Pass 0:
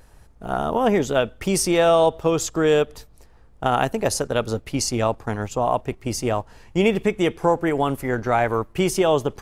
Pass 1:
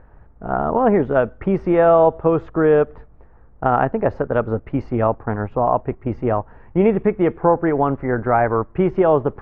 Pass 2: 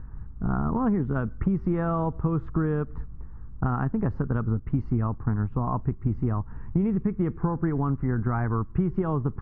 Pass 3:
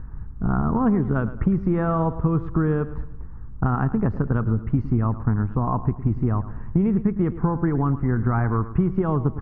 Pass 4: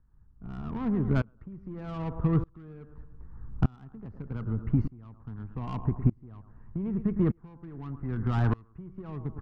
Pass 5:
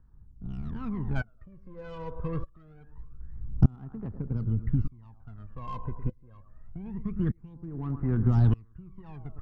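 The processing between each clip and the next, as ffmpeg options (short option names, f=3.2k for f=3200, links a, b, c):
-af "lowpass=f=1.7k:w=0.5412,lowpass=f=1.7k:w=1.3066,volume=3.5dB"
-af "firequalizer=gain_entry='entry(160,0);entry(580,-24);entry(1100,-9);entry(2400,-19);entry(4200,-17)':delay=0.05:min_phase=1,acompressor=threshold=-31dB:ratio=6,volume=9dB"
-af "aecho=1:1:109|218|327|436:0.188|0.0772|0.0317|0.013,volume=4dB"
-filter_complex "[0:a]acrossover=split=300[a][b];[b]asoftclip=type=tanh:threshold=-26.5dB[c];[a][c]amix=inputs=2:normalize=0,aeval=exprs='val(0)*pow(10,-30*if(lt(mod(-0.82*n/s,1),2*abs(-0.82)/1000),1-mod(-0.82*n/s,1)/(2*abs(-0.82)/1000),(mod(-0.82*n/s,1)-2*abs(-0.82)/1000)/(1-2*abs(-0.82)/1000))/20)':c=same"
-af "aphaser=in_gain=1:out_gain=1:delay=2:decay=0.75:speed=0.25:type=sinusoidal,volume=-6dB"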